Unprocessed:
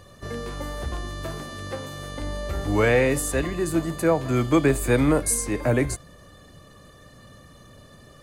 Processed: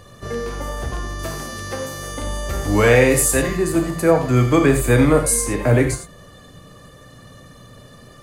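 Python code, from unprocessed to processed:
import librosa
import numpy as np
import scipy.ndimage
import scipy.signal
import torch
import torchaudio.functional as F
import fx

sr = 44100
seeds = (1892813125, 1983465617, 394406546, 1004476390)

y = fx.high_shelf(x, sr, hz=4400.0, db=7.5, at=(1.19, 3.57))
y = fx.rev_gated(y, sr, seeds[0], gate_ms=120, shape='flat', drr_db=4.5)
y = F.gain(torch.from_numpy(y), 4.0).numpy()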